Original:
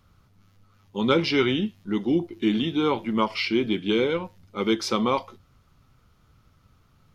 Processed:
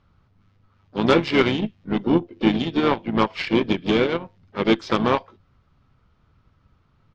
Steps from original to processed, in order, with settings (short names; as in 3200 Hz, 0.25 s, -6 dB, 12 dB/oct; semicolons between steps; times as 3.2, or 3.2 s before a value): added harmonics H 2 -24 dB, 5 -7 dB, 6 -33 dB, 7 -8 dB, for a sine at -6 dBFS; in parallel at 0 dB: compressor 6:1, threshold -31 dBFS, peak gain reduction 17.5 dB; on the sum: harmoniser -5 st -10 dB, +4 st -15 dB, +7 st -18 dB; air absorption 170 m